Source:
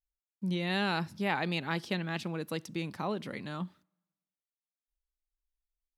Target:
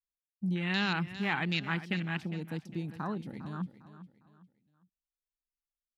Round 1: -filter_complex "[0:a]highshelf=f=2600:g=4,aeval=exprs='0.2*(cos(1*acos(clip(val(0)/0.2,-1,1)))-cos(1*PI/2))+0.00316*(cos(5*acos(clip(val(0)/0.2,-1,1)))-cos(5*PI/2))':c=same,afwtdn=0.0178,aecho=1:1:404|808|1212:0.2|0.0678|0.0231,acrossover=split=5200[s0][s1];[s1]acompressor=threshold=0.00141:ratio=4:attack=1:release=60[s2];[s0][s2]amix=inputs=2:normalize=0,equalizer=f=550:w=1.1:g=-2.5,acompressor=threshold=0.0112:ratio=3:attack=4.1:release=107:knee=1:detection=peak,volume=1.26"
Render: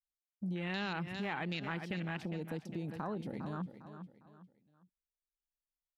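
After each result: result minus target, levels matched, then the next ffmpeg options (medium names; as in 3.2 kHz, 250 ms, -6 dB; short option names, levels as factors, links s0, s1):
compression: peak gain reduction +10.5 dB; 500 Hz band +5.0 dB
-filter_complex "[0:a]highshelf=f=2600:g=4,aeval=exprs='0.2*(cos(1*acos(clip(val(0)/0.2,-1,1)))-cos(1*PI/2))+0.00316*(cos(5*acos(clip(val(0)/0.2,-1,1)))-cos(5*PI/2))':c=same,afwtdn=0.0178,aecho=1:1:404|808|1212:0.2|0.0678|0.0231,acrossover=split=5200[s0][s1];[s1]acompressor=threshold=0.00141:ratio=4:attack=1:release=60[s2];[s0][s2]amix=inputs=2:normalize=0,equalizer=f=550:w=1.1:g=-2.5,volume=1.26"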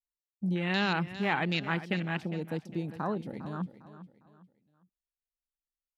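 500 Hz band +4.5 dB
-filter_complex "[0:a]highshelf=f=2600:g=4,aeval=exprs='0.2*(cos(1*acos(clip(val(0)/0.2,-1,1)))-cos(1*PI/2))+0.00316*(cos(5*acos(clip(val(0)/0.2,-1,1)))-cos(5*PI/2))':c=same,afwtdn=0.0178,aecho=1:1:404|808|1212:0.2|0.0678|0.0231,acrossover=split=5200[s0][s1];[s1]acompressor=threshold=0.00141:ratio=4:attack=1:release=60[s2];[s0][s2]amix=inputs=2:normalize=0,equalizer=f=550:w=1.1:g=-11.5,volume=1.26"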